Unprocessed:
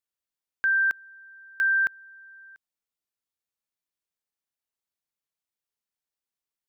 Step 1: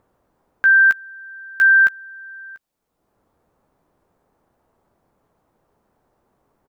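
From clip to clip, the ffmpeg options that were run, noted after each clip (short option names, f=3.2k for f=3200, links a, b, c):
-filter_complex "[0:a]acrossover=split=1100[a][b];[a]acompressor=mode=upward:threshold=-50dB:ratio=2.5[c];[b]asplit=2[d][e];[e]adelay=14,volume=-5.5dB[f];[d][f]amix=inputs=2:normalize=0[g];[c][g]amix=inputs=2:normalize=0,volume=7.5dB"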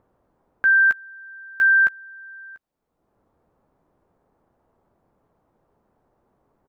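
-af "highshelf=f=2.2k:g=-10.5"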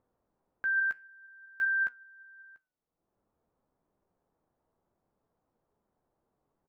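-af "flanger=delay=3.8:depth=3:regen=87:speed=0.55:shape=triangular,volume=-8.5dB"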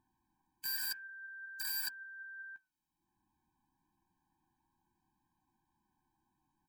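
-af "aeval=exprs='(mod(63.1*val(0)+1,2)-1)/63.1':c=same,lowshelf=f=500:g=-6,afftfilt=real='re*eq(mod(floor(b*sr/1024/370),2),0)':imag='im*eq(mod(floor(b*sr/1024/370),2),0)':win_size=1024:overlap=0.75,volume=5.5dB"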